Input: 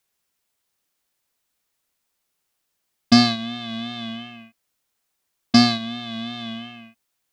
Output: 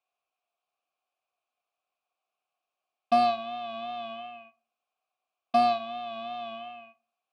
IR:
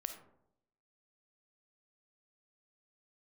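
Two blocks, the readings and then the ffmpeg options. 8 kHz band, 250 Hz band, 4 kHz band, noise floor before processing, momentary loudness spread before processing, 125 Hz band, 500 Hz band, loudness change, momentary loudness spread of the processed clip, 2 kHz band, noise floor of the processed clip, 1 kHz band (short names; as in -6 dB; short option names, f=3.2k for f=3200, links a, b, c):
under -20 dB, -18.5 dB, -17.0 dB, -76 dBFS, 19 LU, under -20 dB, +3.5 dB, -8.0 dB, 19 LU, -11.5 dB, under -85 dBFS, +3.0 dB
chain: -filter_complex "[0:a]asoftclip=type=hard:threshold=-11.5dB,asplit=3[a][b][c];[a]bandpass=f=730:t=q:w=8,volume=0dB[d];[b]bandpass=f=1.09k:t=q:w=8,volume=-6dB[e];[c]bandpass=f=2.44k:t=q:w=8,volume=-9dB[f];[d][e][f]amix=inputs=3:normalize=0,asplit=2[g][h];[1:a]atrim=start_sample=2205,asetrate=70560,aresample=44100[i];[h][i]afir=irnorm=-1:irlink=0,volume=-3dB[j];[g][j]amix=inputs=2:normalize=0,volume=4dB"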